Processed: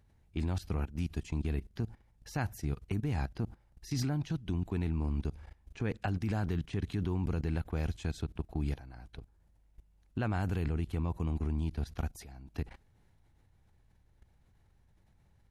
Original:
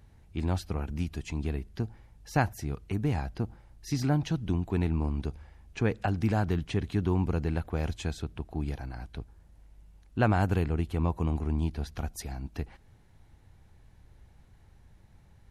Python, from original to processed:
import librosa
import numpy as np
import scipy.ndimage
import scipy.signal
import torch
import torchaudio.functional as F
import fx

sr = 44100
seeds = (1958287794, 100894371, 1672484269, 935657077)

y = fx.dynamic_eq(x, sr, hz=690.0, q=0.7, threshold_db=-42.0, ratio=4.0, max_db=-4)
y = fx.level_steps(y, sr, step_db=17)
y = y * librosa.db_to_amplitude(2.5)